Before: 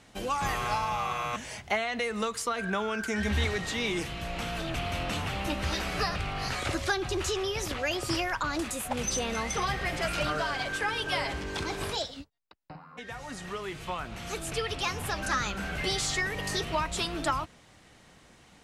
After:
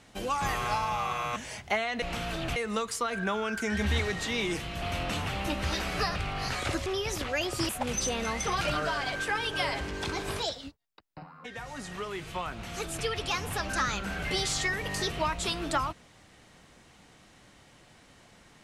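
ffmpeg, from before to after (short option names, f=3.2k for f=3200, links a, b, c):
-filter_complex "[0:a]asplit=7[a][b][c][d][e][f][g];[a]atrim=end=2.022[h];[b]atrim=start=4.278:end=4.822[i];[c]atrim=start=2.018:end=4.282[j];[d]atrim=start=4.818:end=6.862[k];[e]atrim=start=7.358:end=8.192[l];[f]atrim=start=8.788:end=9.712[m];[g]atrim=start=10.138[n];[h][i]acrossfade=d=0.004:c1=hsin:c2=hsin[o];[o][j]acrossfade=d=0.004:c1=hsin:c2=hsin[p];[p][k]acrossfade=d=0.004:c1=hsin:c2=hsin[q];[q][l]acrossfade=d=0.004:c1=hsin:c2=hsin[r];[r][m]acrossfade=d=0.004:c1=hsin:c2=hsin[s];[s][n]acrossfade=d=0.004:c1=hsin:c2=hsin"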